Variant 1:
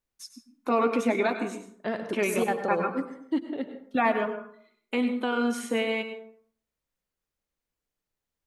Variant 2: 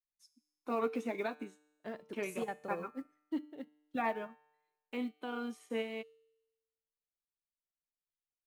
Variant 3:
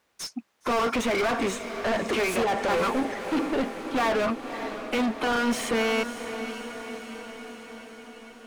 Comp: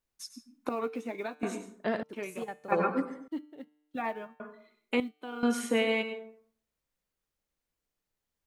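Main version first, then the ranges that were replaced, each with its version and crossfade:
1
0:00.69–0:01.43: punch in from 2
0:02.03–0:02.72: punch in from 2
0:03.28–0:04.40: punch in from 2
0:05.00–0:05.43: punch in from 2
not used: 3

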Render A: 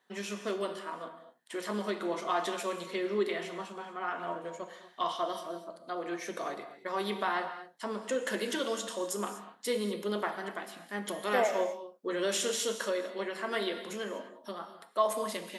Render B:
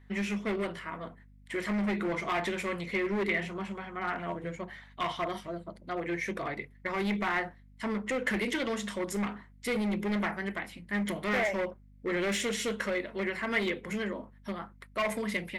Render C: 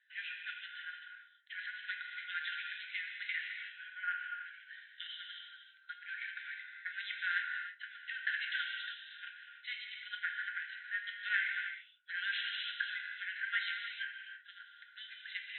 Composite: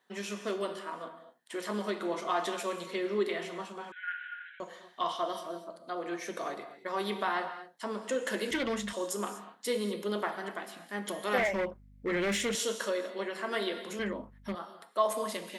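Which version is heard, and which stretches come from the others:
A
0:03.92–0:04.60: punch in from C
0:08.51–0:08.93: punch in from B
0:11.38–0:12.55: punch in from B
0:13.99–0:14.55: punch in from B

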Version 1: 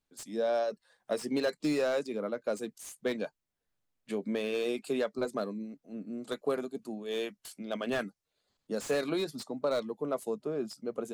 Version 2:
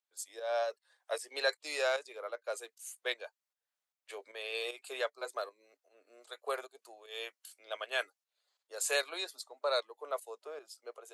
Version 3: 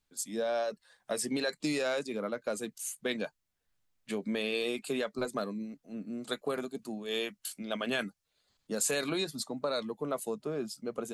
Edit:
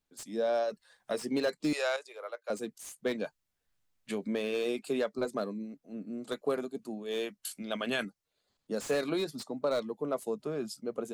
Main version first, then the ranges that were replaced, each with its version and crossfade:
1
0:00.69–0:01.14: punch in from 3
0:01.73–0:02.50: punch in from 2
0:03.25–0:04.27: punch in from 3
0:07.43–0:08.05: punch in from 3
0:10.39–0:10.80: punch in from 3

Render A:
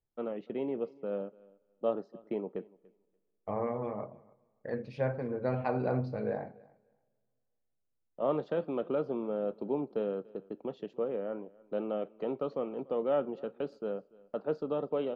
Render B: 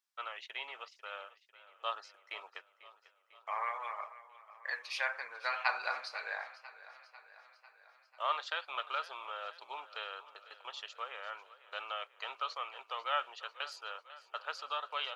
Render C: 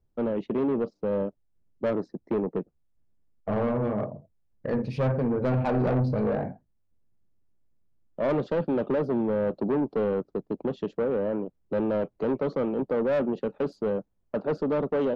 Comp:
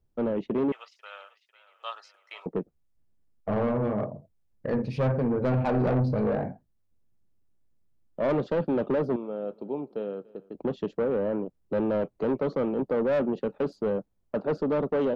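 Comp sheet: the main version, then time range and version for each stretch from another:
C
0:00.72–0:02.46: punch in from B
0:09.16–0:10.55: punch in from A

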